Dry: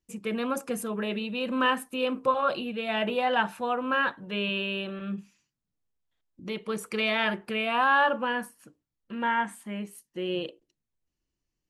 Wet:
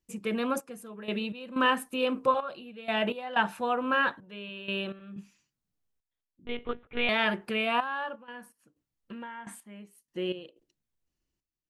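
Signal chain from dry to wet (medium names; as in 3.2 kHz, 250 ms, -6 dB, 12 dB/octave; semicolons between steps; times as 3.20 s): 8.15–9.47 s: compression 16:1, threshold -39 dBFS, peak gain reduction 17.5 dB; trance gate "xxxxx....xx..xx" 125 bpm -12 dB; 6.45–7.09 s: monotone LPC vocoder at 8 kHz 240 Hz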